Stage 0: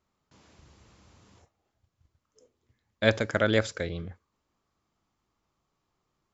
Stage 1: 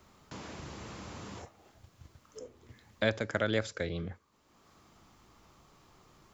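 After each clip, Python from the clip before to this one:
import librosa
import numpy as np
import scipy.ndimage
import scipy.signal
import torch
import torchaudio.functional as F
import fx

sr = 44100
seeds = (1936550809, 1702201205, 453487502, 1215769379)

y = fx.band_squash(x, sr, depth_pct=70)
y = F.gain(torch.from_numpy(y), -3.5).numpy()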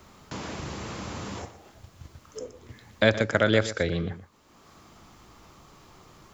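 y = x + 10.0 ** (-14.0 / 20.0) * np.pad(x, (int(121 * sr / 1000.0), 0))[:len(x)]
y = F.gain(torch.from_numpy(y), 8.5).numpy()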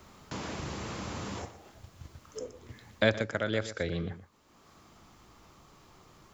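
y = fx.rider(x, sr, range_db=4, speed_s=0.5)
y = F.gain(torch.from_numpy(y), -6.0).numpy()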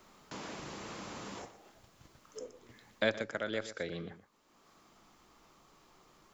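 y = fx.peak_eq(x, sr, hz=82.0, db=-14.5, octaves=1.3)
y = F.gain(torch.from_numpy(y), -4.5).numpy()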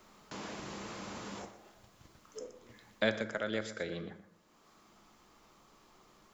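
y = fx.rev_fdn(x, sr, rt60_s=1.1, lf_ratio=0.85, hf_ratio=0.5, size_ms=28.0, drr_db=11.0)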